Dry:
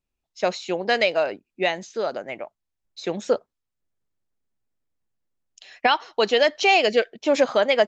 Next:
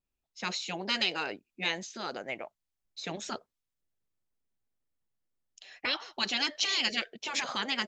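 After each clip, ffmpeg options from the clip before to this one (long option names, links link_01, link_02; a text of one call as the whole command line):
ffmpeg -i in.wav -af "afftfilt=real='re*lt(hypot(re,im),0.282)':imag='im*lt(hypot(re,im),0.282)':win_size=1024:overlap=0.75,adynamicequalizer=threshold=0.00794:dfrequency=1900:dqfactor=0.7:tfrequency=1900:tqfactor=0.7:attack=5:release=100:ratio=0.375:range=2.5:mode=boostabove:tftype=highshelf,volume=-5dB" out.wav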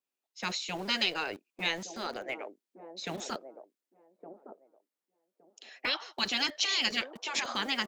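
ffmpeg -i in.wav -filter_complex "[0:a]acrossover=split=260|830[link_01][link_02][link_03];[link_01]acrusher=bits=7:mix=0:aa=0.000001[link_04];[link_02]aecho=1:1:1165|2330|3495:0.562|0.09|0.0144[link_05];[link_04][link_05][link_03]amix=inputs=3:normalize=0" out.wav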